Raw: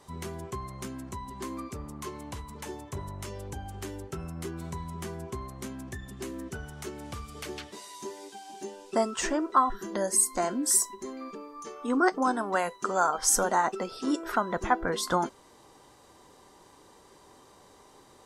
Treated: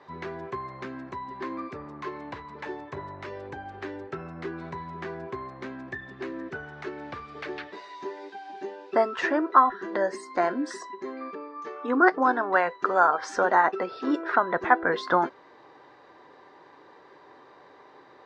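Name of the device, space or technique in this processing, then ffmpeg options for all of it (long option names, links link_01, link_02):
kitchen radio: -af "highpass=190,equalizer=frequency=210:width_type=q:width=4:gain=-10,equalizer=frequency=1700:width_type=q:width=4:gain=6,equalizer=frequency=3100:width_type=q:width=4:gain=-8,lowpass=frequency=3600:width=0.5412,lowpass=frequency=3600:width=1.3066,volume=4.5dB"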